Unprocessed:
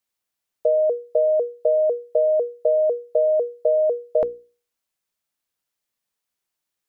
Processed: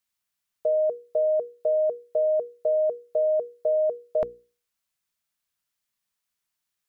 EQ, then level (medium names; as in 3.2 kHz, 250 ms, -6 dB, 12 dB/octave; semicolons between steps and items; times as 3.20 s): graphic EQ with 31 bands 315 Hz -10 dB, 500 Hz -11 dB, 800 Hz -5 dB; 0.0 dB